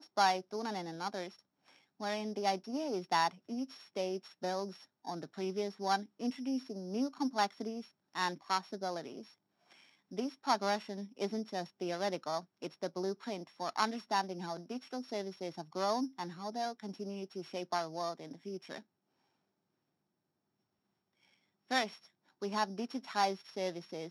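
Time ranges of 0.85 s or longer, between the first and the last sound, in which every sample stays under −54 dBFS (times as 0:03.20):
0:18.82–0:21.70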